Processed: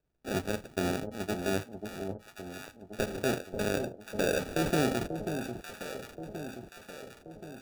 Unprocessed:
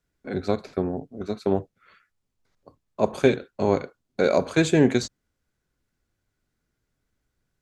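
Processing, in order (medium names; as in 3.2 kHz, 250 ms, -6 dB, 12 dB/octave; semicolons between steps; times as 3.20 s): peak limiter -15.5 dBFS, peak gain reduction 11 dB; sample-and-hold 42×; echo whose repeats swap between lows and highs 539 ms, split 870 Hz, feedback 72%, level -6.5 dB; trim -3 dB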